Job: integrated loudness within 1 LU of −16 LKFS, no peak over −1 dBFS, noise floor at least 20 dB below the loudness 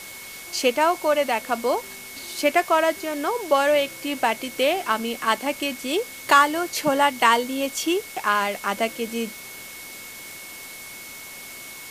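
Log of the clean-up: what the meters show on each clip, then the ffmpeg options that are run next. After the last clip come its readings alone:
interfering tone 2,200 Hz; level of the tone −41 dBFS; background noise floor −39 dBFS; target noise floor −43 dBFS; integrated loudness −22.5 LKFS; sample peak −2.5 dBFS; target loudness −16.0 LKFS
→ -af "bandreject=frequency=2200:width=30"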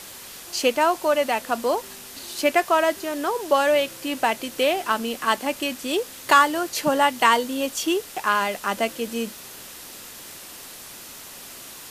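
interfering tone none found; background noise floor −41 dBFS; target noise floor −43 dBFS
→ -af "afftdn=noise_reduction=6:noise_floor=-41"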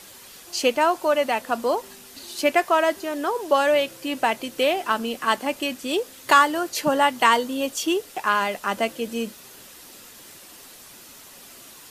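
background noise floor −46 dBFS; integrated loudness −22.5 LKFS; sample peak −2.5 dBFS; target loudness −16.0 LKFS
→ -af "volume=6.5dB,alimiter=limit=-1dB:level=0:latency=1"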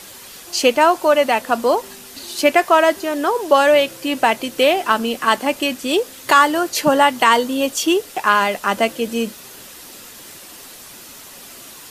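integrated loudness −16.5 LKFS; sample peak −1.0 dBFS; background noise floor −39 dBFS

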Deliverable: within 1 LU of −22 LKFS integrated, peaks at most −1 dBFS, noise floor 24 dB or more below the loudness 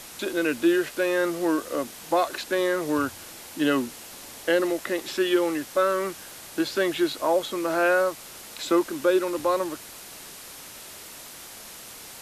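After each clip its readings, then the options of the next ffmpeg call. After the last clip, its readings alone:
background noise floor −43 dBFS; target noise floor −50 dBFS; integrated loudness −25.5 LKFS; sample peak −9.5 dBFS; target loudness −22.0 LKFS
→ -af "afftdn=noise_reduction=7:noise_floor=-43"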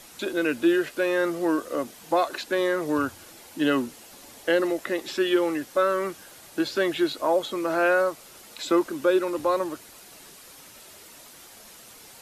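background noise floor −48 dBFS; target noise floor −50 dBFS
→ -af "afftdn=noise_reduction=6:noise_floor=-48"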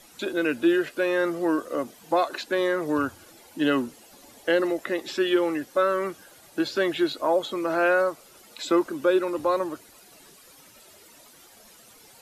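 background noise floor −53 dBFS; integrated loudness −25.5 LKFS; sample peak −9.5 dBFS; target loudness −22.0 LKFS
→ -af "volume=3.5dB"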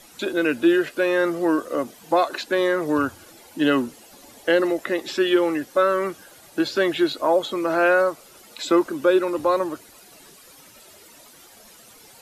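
integrated loudness −22.0 LKFS; sample peak −6.0 dBFS; background noise floor −49 dBFS

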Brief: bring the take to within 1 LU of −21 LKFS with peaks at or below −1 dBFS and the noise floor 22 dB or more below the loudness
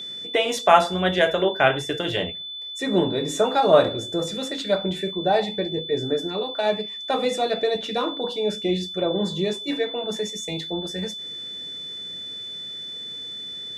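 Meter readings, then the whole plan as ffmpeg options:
interfering tone 3,500 Hz; level of the tone −32 dBFS; integrated loudness −24.0 LKFS; sample peak −1.0 dBFS; target loudness −21.0 LKFS
→ -af "bandreject=frequency=3500:width=30"
-af "volume=3dB,alimiter=limit=-1dB:level=0:latency=1"

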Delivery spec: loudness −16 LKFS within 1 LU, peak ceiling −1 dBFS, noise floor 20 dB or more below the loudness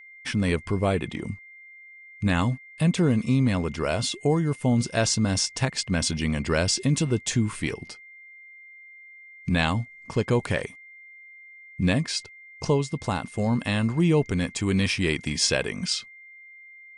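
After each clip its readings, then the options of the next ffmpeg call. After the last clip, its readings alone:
interfering tone 2,100 Hz; level of the tone −45 dBFS; integrated loudness −25.0 LKFS; sample peak −8.0 dBFS; target loudness −16.0 LKFS
→ -af "bandreject=frequency=2100:width=30"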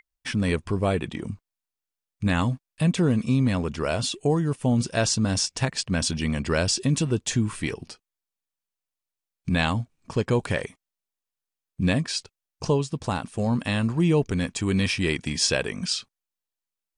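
interfering tone none found; integrated loudness −25.0 LKFS; sample peak −8.5 dBFS; target loudness −16.0 LKFS
→ -af "volume=9dB,alimiter=limit=-1dB:level=0:latency=1"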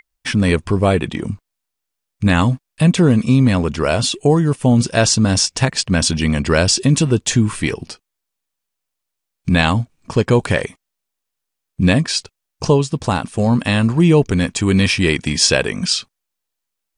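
integrated loudness −16.0 LKFS; sample peak −1.0 dBFS; background noise floor −79 dBFS

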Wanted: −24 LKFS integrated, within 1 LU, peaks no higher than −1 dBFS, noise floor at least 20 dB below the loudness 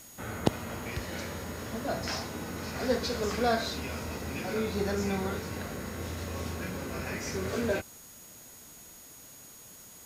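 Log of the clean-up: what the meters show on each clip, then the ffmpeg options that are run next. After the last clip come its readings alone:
interfering tone 6,700 Hz; level of the tone −53 dBFS; background noise floor −51 dBFS; target noise floor −54 dBFS; integrated loudness −33.5 LKFS; sample peak −5.0 dBFS; target loudness −24.0 LKFS
→ -af "bandreject=frequency=6700:width=30"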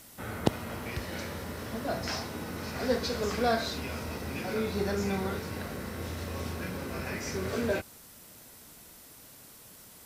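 interfering tone none found; background noise floor −52 dBFS; target noise floor −54 dBFS
→ -af "afftdn=noise_reduction=6:noise_floor=-52"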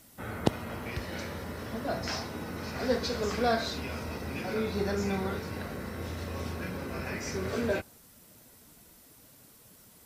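background noise floor −57 dBFS; integrated loudness −33.5 LKFS; sample peak −5.5 dBFS; target loudness −24.0 LKFS
→ -af "volume=9.5dB,alimiter=limit=-1dB:level=0:latency=1"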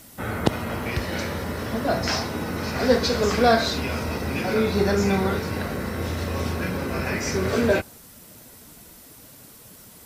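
integrated loudness −24.5 LKFS; sample peak −1.0 dBFS; background noise floor −47 dBFS

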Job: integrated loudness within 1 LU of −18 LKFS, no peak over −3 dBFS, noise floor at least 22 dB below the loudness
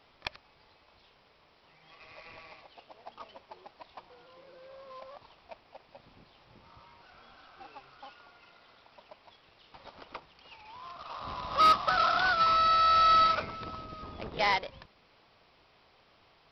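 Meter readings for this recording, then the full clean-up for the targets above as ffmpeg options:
integrated loudness −26.0 LKFS; sample peak −15.0 dBFS; target loudness −18.0 LKFS
→ -af "volume=8dB"

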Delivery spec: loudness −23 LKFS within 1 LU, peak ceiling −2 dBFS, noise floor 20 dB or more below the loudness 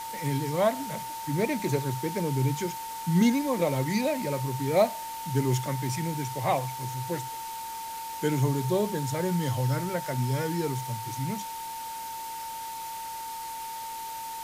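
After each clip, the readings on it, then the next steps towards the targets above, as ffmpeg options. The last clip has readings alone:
interfering tone 900 Hz; level of the tone −35 dBFS; background noise floor −37 dBFS; target noise floor −50 dBFS; integrated loudness −29.5 LKFS; sample peak −11.5 dBFS; target loudness −23.0 LKFS
→ -af "bandreject=frequency=900:width=30"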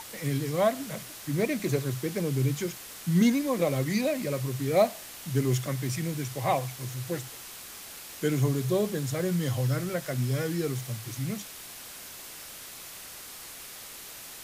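interfering tone none found; background noise floor −44 dBFS; target noise floor −49 dBFS
→ -af "afftdn=noise_reduction=6:noise_floor=-44"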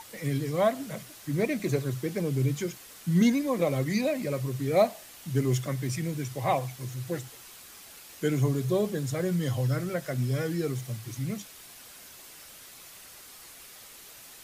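background noise floor −49 dBFS; integrated loudness −29.0 LKFS; sample peak −12.0 dBFS; target loudness −23.0 LKFS
→ -af "volume=6dB"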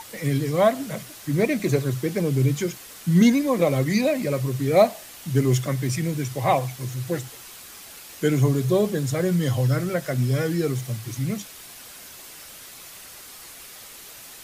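integrated loudness −23.0 LKFS; sample peak −6.0 dBFS; background noise floor −43 dBFS

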